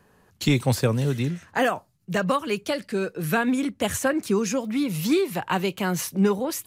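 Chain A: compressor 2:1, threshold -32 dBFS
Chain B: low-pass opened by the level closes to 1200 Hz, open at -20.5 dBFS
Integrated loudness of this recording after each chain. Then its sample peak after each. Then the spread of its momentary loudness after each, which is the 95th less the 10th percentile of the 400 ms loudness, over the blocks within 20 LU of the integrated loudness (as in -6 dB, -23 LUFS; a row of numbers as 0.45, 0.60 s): -31.5, -25.0 LUFS; -16.0, -10.0 dBFS; 4, 5 LU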